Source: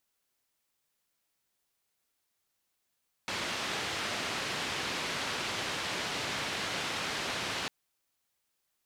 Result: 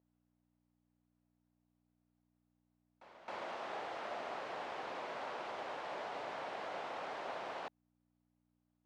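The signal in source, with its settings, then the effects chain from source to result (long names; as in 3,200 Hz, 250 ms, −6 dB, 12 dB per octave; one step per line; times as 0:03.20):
band-limited noise 86–3,700 Hz, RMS −35 dBFS 4.40 s
mains hum 60 Hz, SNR 23 dB
resonant band-pass 690 Hz, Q 1.8
echo ahead of the sound 267 ms −15 dB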